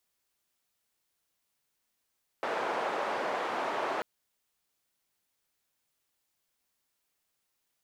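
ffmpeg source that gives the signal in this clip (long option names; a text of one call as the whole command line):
ffmpeg -f lavfi -i "anoisesrc=color=white:duration=1.59:sample_rate=44100:seed=1,highpass=frequency=530,lowpass=frequency=850,volume=-10.5dB" out.wav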